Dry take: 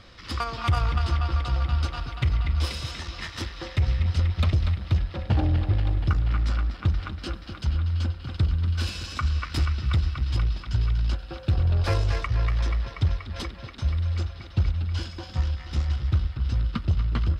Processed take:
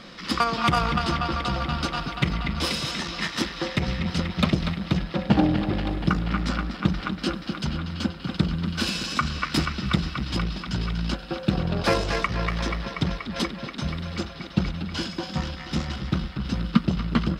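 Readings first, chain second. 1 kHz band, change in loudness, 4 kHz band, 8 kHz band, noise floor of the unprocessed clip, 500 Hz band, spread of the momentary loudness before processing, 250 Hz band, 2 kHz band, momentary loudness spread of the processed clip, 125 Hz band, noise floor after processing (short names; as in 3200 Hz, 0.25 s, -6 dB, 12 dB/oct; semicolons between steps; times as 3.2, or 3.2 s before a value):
+7.0 dB, +0.5 dB, +7.0 dB, n/a, -42 dBFS, +8.0 dB, 8 LU, +11.5 dB, +7.0 dB, 7 LU, -4.0 dB, -39 dBFS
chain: resonant low shelf 130 Hz -11 dB, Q 3; gain +7 dB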